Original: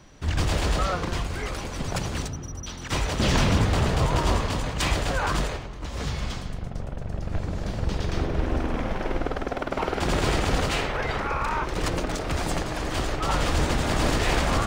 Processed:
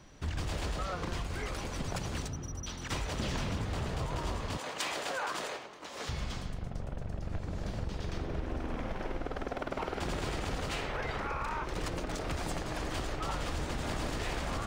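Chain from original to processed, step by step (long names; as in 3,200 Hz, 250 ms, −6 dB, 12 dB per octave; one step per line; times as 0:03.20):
0:04.57–0:06.09: high-pass filter 400 Hz 12 dB per octave
downward compressor, threshold −27 dBFS, peak gain reduction 10.5 dB
level −4.5 dB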